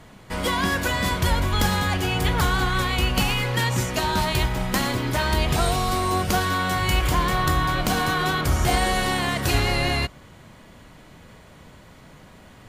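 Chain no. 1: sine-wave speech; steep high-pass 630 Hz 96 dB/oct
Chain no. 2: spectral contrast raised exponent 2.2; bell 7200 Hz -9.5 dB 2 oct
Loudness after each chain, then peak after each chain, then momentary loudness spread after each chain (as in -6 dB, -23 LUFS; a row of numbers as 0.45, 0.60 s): -21.5, -24.5 LUFS; -5.5, -10.5 dBFS; 5, 2 LU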